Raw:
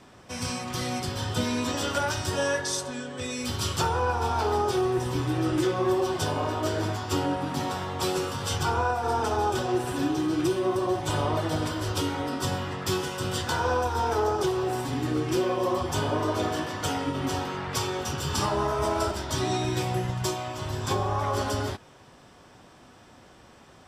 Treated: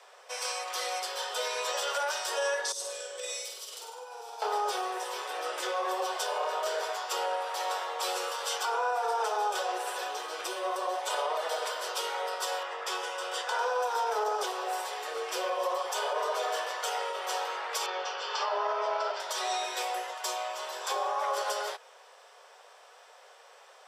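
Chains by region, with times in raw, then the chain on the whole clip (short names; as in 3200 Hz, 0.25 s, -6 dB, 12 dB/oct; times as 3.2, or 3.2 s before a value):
2.72–4.42 bell 1300 Hz -14 dB 2.5 oct + negative-ratio compressor -37 dBFS + flutter echo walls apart 8.5 m, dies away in 0.68 s
12.63–13.59 LPF 12000 Hz + high shelf 4400 Hz -6.5 dB + notch 4200 Hz
17.86–19.2 LPF 4800 Hz 24 dB/oct + notch 3800 Hz, Q 11
whole clip: steep high-pass 440 Hz 72 dB/oct; limiter -21.5 dBFS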